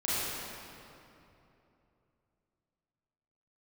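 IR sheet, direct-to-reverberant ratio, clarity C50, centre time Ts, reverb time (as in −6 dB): −10.5 dB, −6.0 dB, 200 ms, 2.9 s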